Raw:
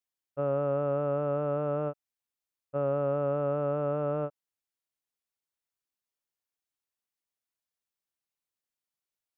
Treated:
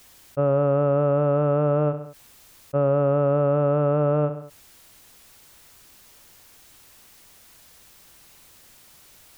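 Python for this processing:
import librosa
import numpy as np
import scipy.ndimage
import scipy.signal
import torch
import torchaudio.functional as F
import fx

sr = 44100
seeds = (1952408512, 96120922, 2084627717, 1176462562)

y = fx.low_shelf(x, sr, hz=140.0, db=9.0)
y = fx.echo_feedback(y, sr, ms=67, feedback_pct=34, wet_db=-18.5)
y = fx.env_flatten(y, sr, amount_pct=50)
y = F.gain(torch.from_numpy(y), 6.5).numpy()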